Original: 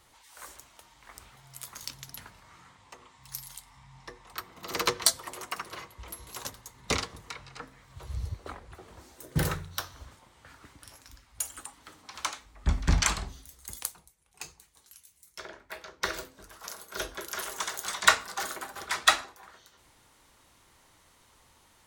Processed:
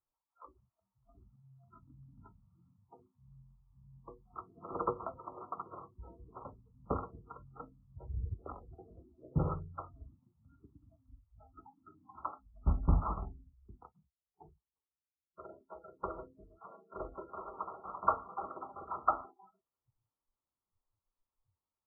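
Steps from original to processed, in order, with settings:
noise reduction from a noise print of the clip's start 30 dB
linear-phase brick-wall low-pass 1,400 Hz
level −3.5 dB

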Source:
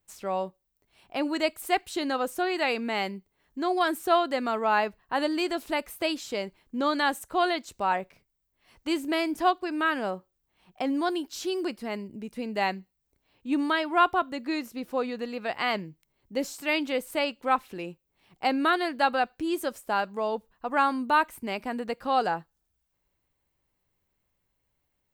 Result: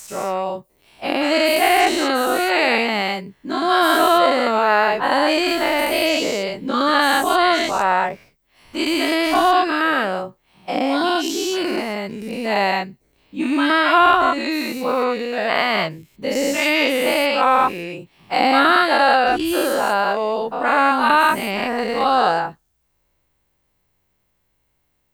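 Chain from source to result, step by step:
every bin's largest magnitude spread in time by 240 ms
level +3.5 dB

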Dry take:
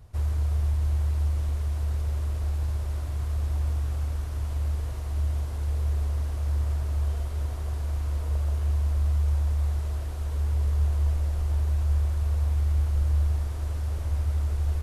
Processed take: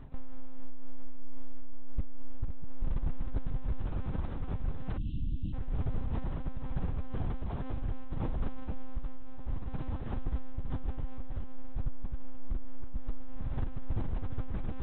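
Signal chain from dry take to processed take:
brickwall limiter −22.5 dBFS, peak gain reduction 6.5 dB
dynamic equaliser 130 Hz, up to +5 dB, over −54 dBFS, Q 5.3
on a send: feedback delay with all-pass diffusion 497 ms, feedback 54%, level −5 dB
on the sum: one-pitch LPC vocoder at 8 kHz 260 Hz
high-shelf EQ 2,000 Hz −9.5 dB
reversed playback
upward compression, threshold −28 dBFS
reversed playback
time-frequency box erased 0:04.97–0:05.53, 330–2,600 Hz
soft clipping −22 dBFS, distortion −19 dB
amplitude modulation by smooth noise, depth 50%
level +3 dB

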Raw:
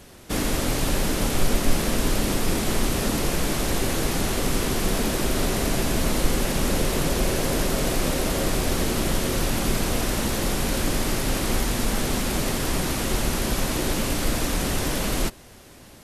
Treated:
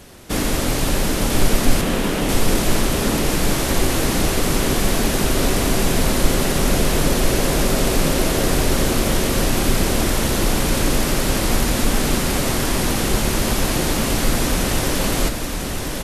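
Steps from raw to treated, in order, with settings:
0:01.81–0:02.29: elliptic band-pass filter 150–3,300 Hz
single-tap delay 999 ms −4.5 dB
level +4 dB

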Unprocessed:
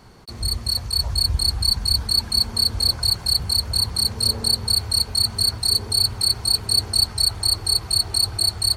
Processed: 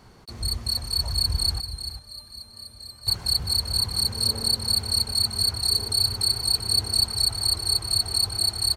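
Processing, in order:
0:01.60–0:03.07: tuned comb filter 600 Hz, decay 0.54 s, mix 90%
single-tap delay 390 ms −10 dB
level −3.5 dB

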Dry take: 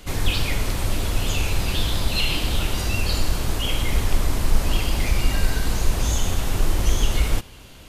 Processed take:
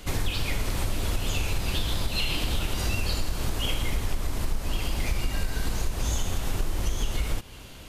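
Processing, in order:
downward compressor, threshold −22 dBFS, peak gain reduction 12.5 dB

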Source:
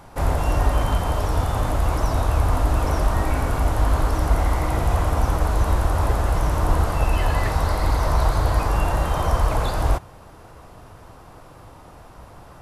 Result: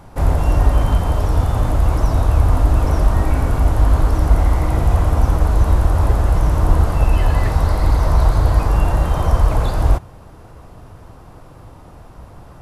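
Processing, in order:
low-shelf EQ 400 Hz +7.5 dB
level −1 dB

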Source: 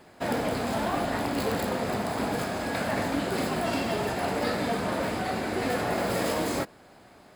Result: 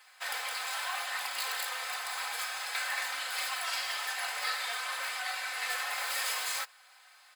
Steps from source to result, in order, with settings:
Bessel high-pass filter 1,600 Hz, order 4
comb filter 3.9 ms, depth 81%
level +1 dB

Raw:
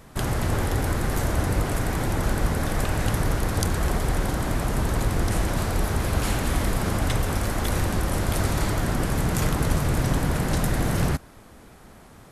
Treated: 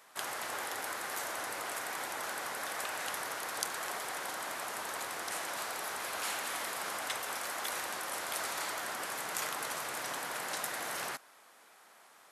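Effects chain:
high-pass filter 830 Hz 12 dB per octave
level −5 dB

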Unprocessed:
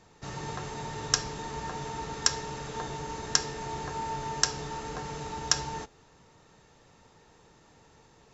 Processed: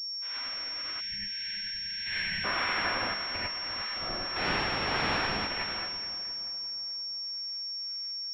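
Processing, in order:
hearing-aid frequency compression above 1,600 Hz 1.5 to 1
0:00.72–0:01.25: low-shelf EQ 380 Hz −10.5 dB
gate on every frequency bin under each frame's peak −20 dB weak
0:02.06–0:03.04: mid-hump overdrive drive 31 dB, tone 1,300 Hz, clips at −25 dBFS
0:04.36–0:05.37: bit-depth reduction 6 bits, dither triangular
two-band tremolo in antiphase 1.7 Hz, depth 50%, crossover 880 Hz
echo with a time of its own for lows and highs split 1,200 Hz, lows 348 ms, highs 218 ms, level −10 dB
reverb whose tail is shaped and stops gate 120 ms rising, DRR −5 dB
0:01.01–0:02.44: time-frequency box erased 230–1,500 Hz
switching amplifier with a slow clock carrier 5,500 Hz
level +6 dB

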